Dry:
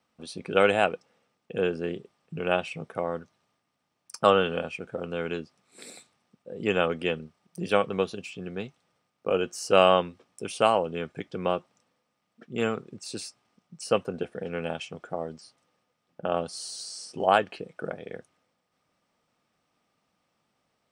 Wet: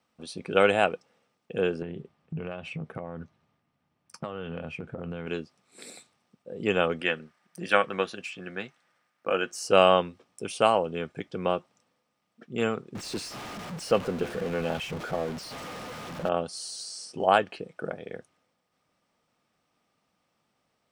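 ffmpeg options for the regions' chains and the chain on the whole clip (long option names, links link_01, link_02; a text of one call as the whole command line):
ffmpeg -i in.wav -filter_complex "[0:a]asettb=1/sr,asplit=3[link_01][link_02][link_03];[link_01]atrim=end=1.824[link_04];[link_02]atrim=start=1.82:end=5.27,asetpts=PTS-STARTPTS,afade=type=in:duration=0.004:curve=qsin,afade=type=out:start_time=3.446:duration=0.004:curve=qsin,bass=frequency=250:gain=9,treble=frequency=4000:gain=-10,acompressor=threshold=-31dB:ratio=10:attack=3.2:release=140:knee=1:detection=peak,asplit=2[link_05][link_06];[link_06]adelay=13,volume=-13.5dB[link_07];[link_05][link_07]amix=inputs=2:normalize=0,atrim=end_sample=152145[link_08];[link_03]atrim=start=5.266[link_09];[link_04][link_08]acrossfade=duration=0.004:curve1=hsin:curve2=qsin[link_10];[link_10][link_09]acrossfade=duration=0.004:curve1=qsin:curve2=hsin,asettb=1/sr,asplit=3[link_11][link_12][link_13];[link_11]atrim=end=7.014[link_14];[link_12]atrim=start=7.01:end=9.51,asetpts=PTS-STARTPTS,afade=type=in:duration=0.004:curve=qsin,afade=type=out:start_time=2.496:duration=0.004:curve=qsin,highpass=frequency=280:poles=1,equalizer=frequency=1700:width=1.7:gain=10,bandreject=frequency=430:width=7.7[link_15];[link_13]atrim=start=9.506[link_16];[link_14][link_15]acrossfade=duration=0.004:curve1=hsin:curve2=qsin[link_17];[link_17][link_16]acrossfade=duration=0.004:curve1=qsin:curve2=hsin,asettb=1/sr,asplit=3[link_18][link_19][link_20];[link_18]atrim=end=12.954[link_21];[link_19]atrim=start=12.95:end=16.29,asetpts=PTS-STARTPTS,afade=type=in:duration=0.004:curve=qsin,afade=type=out:start_time=3.336:duration=0.004:curve=qsin,aeval=exprs='val(0)+0.5*0.0266*sgn(val(0))':channel_layout=same,lowpass=frequency=3200:poles=1[link_22];[link_20]atrim=start=16.286[link_23];[link_21][link_22]acrossfade=duration=0.004:curve1=hsin:curve2=qsin[link_24];[link_24][link_23]acrossfade=duration=0.004:curve1=qsin:curve2=hsin" out.wav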